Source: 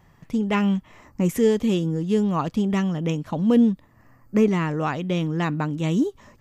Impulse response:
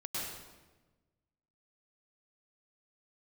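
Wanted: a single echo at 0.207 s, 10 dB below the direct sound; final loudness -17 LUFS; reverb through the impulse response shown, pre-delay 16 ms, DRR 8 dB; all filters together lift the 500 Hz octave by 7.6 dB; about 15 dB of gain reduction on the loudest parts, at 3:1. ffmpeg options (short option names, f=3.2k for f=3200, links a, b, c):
-filter_complex "[0:a]equalizer=f=500:t=o:g=9,acompressor=threshold=-29dB:ratio=3,aecho=1:1:207:0.316,asplit=2[a][b];[1:a]atrim=start_sample=2205,adelay=16[c];[b][c]afir=irnorm=-1:irlink=0,volume=-10.5dB[d];[a][d]amix=inputs=2:normalize=0,volume=12dB"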